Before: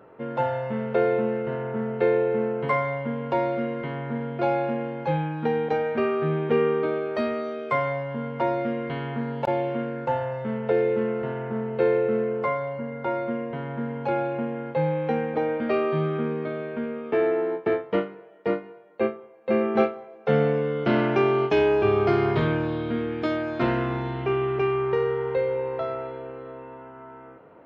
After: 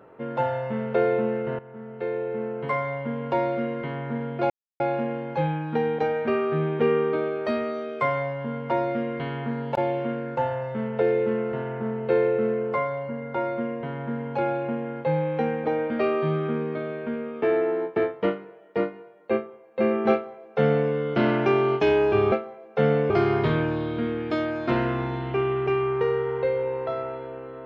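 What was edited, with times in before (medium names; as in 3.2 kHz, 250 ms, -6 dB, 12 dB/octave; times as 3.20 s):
1.59–3.26 s: fade in, from -16 dB
4.50 s: insert silence 0.30 s
19.82–20.60 s: copy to 22.02 s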